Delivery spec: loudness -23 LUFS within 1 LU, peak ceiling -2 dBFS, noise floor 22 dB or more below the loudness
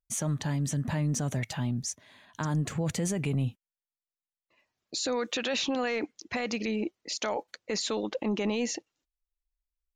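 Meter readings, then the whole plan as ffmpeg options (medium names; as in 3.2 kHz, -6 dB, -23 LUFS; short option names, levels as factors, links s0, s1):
loudness -31.5 LUFS; peak level -19.0 dBFS; loudness target -23.0 LUFS
-> -af "volume=2.66"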